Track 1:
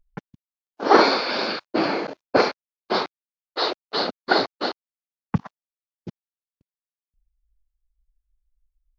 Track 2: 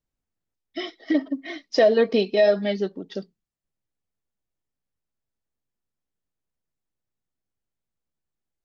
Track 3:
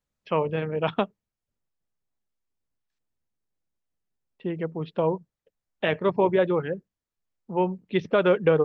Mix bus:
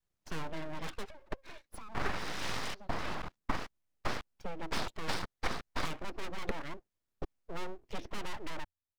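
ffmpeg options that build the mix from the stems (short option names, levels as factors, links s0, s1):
-filter_complex "[0:a]highpass=130,highshelf=f=2400:g=-10,acompressor=threshold=0.0355:ratio=12,adelay=1150,volume=1.06[s0];[1:a]highshelf=f=2700:g=-9.5,alimiter=limit=0.1:level=0:latency=1:release=265,acompressor=threshold=0.0141:ratio=10,volume=0.562[s1];[2:a]volume=0.841[s2];[s1][s2]amix=inputs=2:normalize=0,asoftclip=type=tanh:threshold=0.0531,acompressor=threshold=0.0141:ratio=1.5,volume=1[s3];[s0][s3]amix=inputs=2:normalize=0,adynamicequalizer=threshold=0.00631:dfrequency=330:dqfactor=0.79:tfrequency=330:tqfactor=0.79:attack=5:release=100:ratio=0.375:range=2.5:mode=cutabove:tftype=bell,aeval=exprs='abs(val(0))':c=same"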